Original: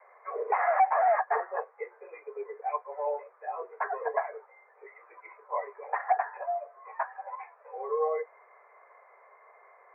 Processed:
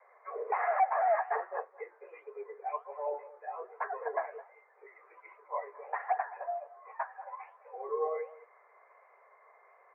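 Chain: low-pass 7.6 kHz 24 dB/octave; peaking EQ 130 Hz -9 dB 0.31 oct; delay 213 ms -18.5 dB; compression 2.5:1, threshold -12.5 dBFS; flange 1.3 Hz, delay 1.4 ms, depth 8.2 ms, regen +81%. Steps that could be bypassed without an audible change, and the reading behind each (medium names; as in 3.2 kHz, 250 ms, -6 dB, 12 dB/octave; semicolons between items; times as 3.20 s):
low-pass 7.6 kHz: input has nothing above 2.3 kHz; peaking EQ 130 Hz: input has nothing below 360 Hz; compression, threshold -12.5 dBFS: peak at its input -14.0 dBFS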